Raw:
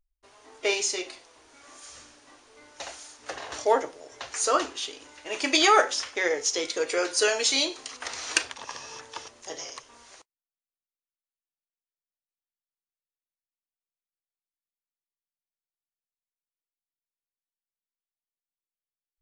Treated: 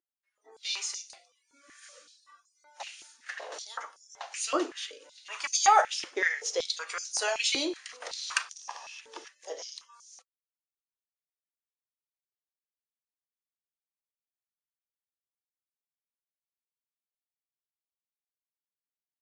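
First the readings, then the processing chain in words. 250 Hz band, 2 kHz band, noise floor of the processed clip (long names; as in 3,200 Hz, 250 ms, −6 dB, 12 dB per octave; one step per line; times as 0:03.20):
−5.5 dB, −4.0 dB, below −85 dBFS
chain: noise reduction from a noise print of the clip's start 26 dB
high-pass on a step sequencer 5.3 Hz 340–6,000 Hz
level −7.5 dB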